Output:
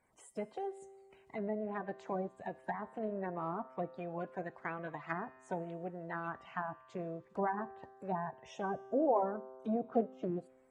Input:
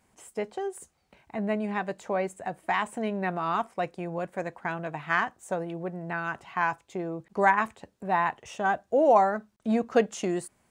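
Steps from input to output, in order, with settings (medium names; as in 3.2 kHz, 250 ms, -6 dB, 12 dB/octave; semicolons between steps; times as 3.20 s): coarse spectral quantiser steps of 30 dB; low-pass that closes with the level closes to 750 Hz, closed at -24.5 dBFS; feedback comb 130 Hz, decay 1.8 s, mix 60%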